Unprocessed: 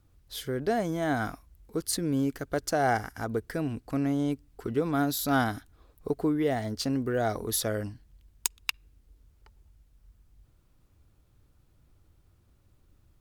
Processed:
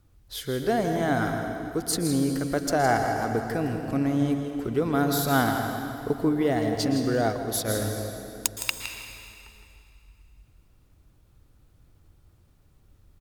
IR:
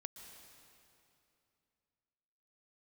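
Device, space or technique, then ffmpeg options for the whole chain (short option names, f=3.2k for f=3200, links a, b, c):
cave: -filter_complex "[0:a]aecho=1:1:163:0.299[a];[1:a]atrim=start_sample=2205[b];[a][b]afir=irnorm=-1:irlink=0,asplit=3[c][d][e];[c]afade=t=out:st=7.27:d=0.02[f];[d]agate=range=-33dB:threshold=-29dB:ratio=3:detection=peak,afade=t=in:st=7.27:d=0.02,afade=t=out:st=7.67:d=0.02[g];[e]afade=t=in:st=7.67:d=0.02[h];[f][g][h]amix=inputs=3:normalize=0,volume=8dB"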